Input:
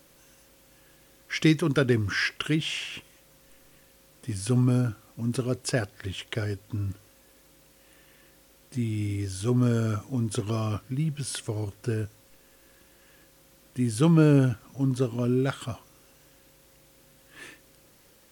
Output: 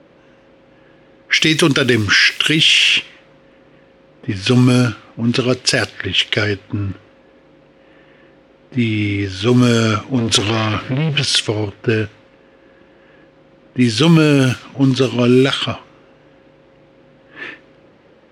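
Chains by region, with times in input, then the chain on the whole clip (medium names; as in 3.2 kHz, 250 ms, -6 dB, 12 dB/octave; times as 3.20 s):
10.18–11.25 s: compression 3:1, threshold -34 dBFS + waveshaping leveller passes 3
whole clip: frequency weighting D; level-controlled noise filter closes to 800 Hz, open at -20 dBFS; loudness maximiser +16 dB; trim -1 dB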